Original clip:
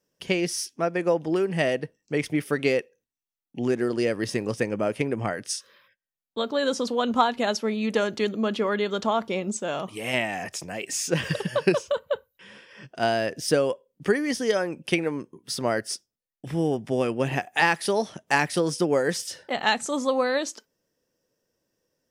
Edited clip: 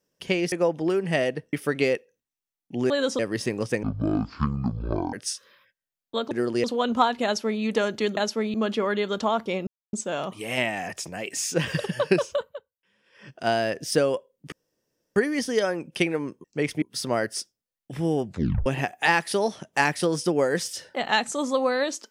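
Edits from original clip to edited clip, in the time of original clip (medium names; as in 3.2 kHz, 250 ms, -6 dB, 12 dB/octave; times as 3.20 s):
0.52–0.98 s: delete
1.99–2.37 s: move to 15.36 s
3.74–4.07 s: swap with 6.54–6.83 s
4.71–5.36 s: speed 50%
7.44–7.81 s: copy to 8.36 s
9.49 s: insert silence 0.26 s
11.90–12.86 s: dip -21 dB, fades 0.27 s
14.08 s: insert room tone 0.64 s
16.79 s: tape stop 0.41 s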